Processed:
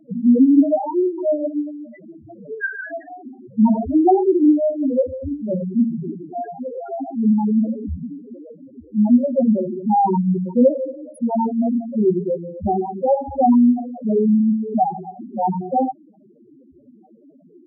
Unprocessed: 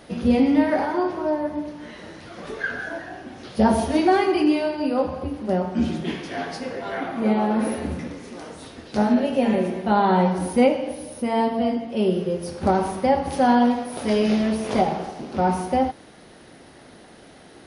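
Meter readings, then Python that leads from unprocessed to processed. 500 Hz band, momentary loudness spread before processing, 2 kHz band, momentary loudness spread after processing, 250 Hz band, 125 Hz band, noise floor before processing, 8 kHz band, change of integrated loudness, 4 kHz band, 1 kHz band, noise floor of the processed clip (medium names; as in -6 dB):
+1.5 dB, 14 LU, no reading, 15 LU, +4.5 dB, +2.0 dB, -47 dBFS, under -20 dB, +3.5 dB, under -40 dB, +0.5 dB, -51 dBFS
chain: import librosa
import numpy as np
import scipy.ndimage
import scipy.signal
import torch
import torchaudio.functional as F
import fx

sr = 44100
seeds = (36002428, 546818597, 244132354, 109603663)

y = fx.spec_topn(x, sr, count=2)
y = fx.hum_notches(y, sr, base_hz=60, count=3)
y = F.gain(torch.from_numpy(y), 7.0).numpy()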